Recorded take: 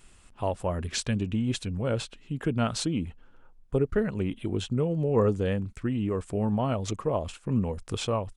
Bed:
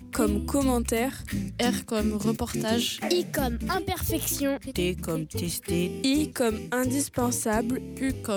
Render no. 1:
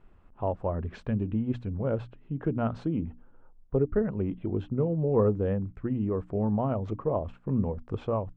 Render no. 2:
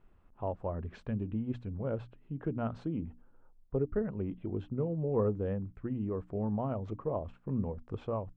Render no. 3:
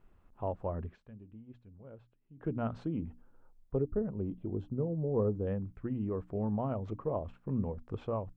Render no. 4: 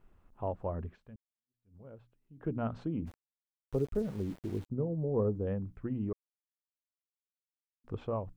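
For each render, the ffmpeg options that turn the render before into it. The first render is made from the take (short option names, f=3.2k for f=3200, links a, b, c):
-af "lowpass=1.1k,bandreject=f=60:t=h:w=6,bandreject=f=120:t=h:w=6,bandreject=f=180:t=h:w=6,bandreject=f=240:t=h:w=6,bandreject=f=300:t=h:w=6"
-af "volume=-6dB"
-filter_complex "[0:a]asettb=1/sr,asplit=3[a][b][c];[a]atrim=end=3.814[d];[b]atrim=start=3.81:end=5.47,asetpts=PTS-STARTPTS,afade=t=in:d=0.004:c=qsin,afade=t=out:st=1.656:d=0.004:c=qsin,equalizer=f=2.1k:t=o:w=1.4:g=-13.5[e];[c]atrim=start=5.466[f];[d][e]acrossfade=d=0.004:c1=hsin:c2=qsin[g];[g][f]acrossfade=d=0.004:c1=qsin:c2=hsin,asplit=3[h][i][j];[h]atrim=end=0.97,asetpts=PTS-STARTPTS,afade=t=out:st=0.84:d=0.13:silence=0.149624[k];[i]atrim=start=0.97:end=2.36,asetpts=PTS-STARTPTS,volume=-16.5dB[l];[j]atrim=start=2.36,asetpts=PTS-STARTPTS,afade=t=in:d=0.13:silence=0.149624[m];[k][l][m]concat=n=3:v=0:a=1"
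-filter_complex "[0:a]asplit=3[a][b][c];[a]afade=t=out:st=3.06:d=0.02[d];[b]aeval=exprs='val(0)*gte(abs(val(0)),0.00422)':c=same,afade=t=in:st=3.06:d=0.02,afade=t=out:st=4.69:d=0.02[e];[c]afade=t=in:st=4.69:d=0.02[f];[d][e][f]amix=inputs=3:normalize=0,asplit=4[g][h][i][j];[g]atrim=end=1.16,asetpts=PTS-STARTPTS,afade=t=out:st=1.156:d=0.004:c=hsin[k];[h]atrim=start=1.16:end=6.13,asetpts=PTS-STARTPTS,afade=t=in:d=0.6:c=exp,afade=t=out:st=4.966:d=0.004:c=hsin[l];[i]atrim=start=6.13:end=7.84,asetpts=PTS-STARTPTS,volume=0[m];[j]atrim=start=7.84,asetpts=PTS-STARTPTS,afade=t=in:d=0.004:c=hsin[n];[k][l][m][n]concat=n=4:v=0:a=1"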